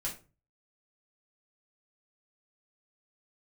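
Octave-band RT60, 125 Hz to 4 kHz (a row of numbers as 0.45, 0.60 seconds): 0.60, 0.40, 0.35, 0.30, 0.25, 0.25 seconds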